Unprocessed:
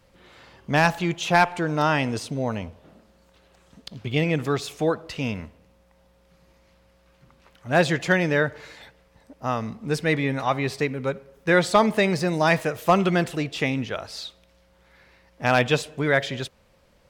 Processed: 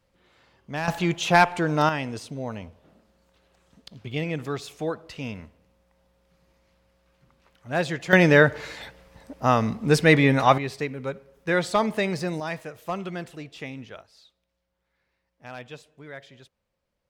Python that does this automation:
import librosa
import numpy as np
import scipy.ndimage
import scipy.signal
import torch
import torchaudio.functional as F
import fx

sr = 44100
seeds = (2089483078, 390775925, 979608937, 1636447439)

y = fx.gain(x, sr, db=fx.steps((0.0, -10.5), (0.88, 1.0), (1.89, -6.0), (8.13, 6.0), (10.58, -4.5), (12.4, -12.0), (14.02, -20.0)))